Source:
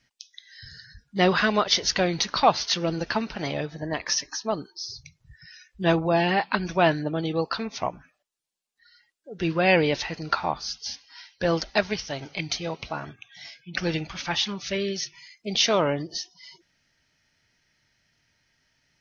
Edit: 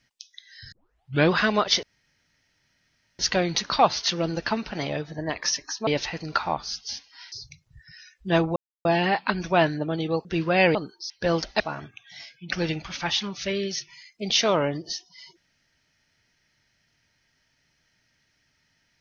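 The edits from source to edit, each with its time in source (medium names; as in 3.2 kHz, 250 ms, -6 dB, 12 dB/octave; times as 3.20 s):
0.72 s: tape start 0.60 s
1.83 s: insert room tone 1.36 s
4.51–4.86 s: swap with 9.84–11.29 s
6.10 s: insert silence 0.29 s
7.50–9.34 s: delete
11.79–12.85 s: delete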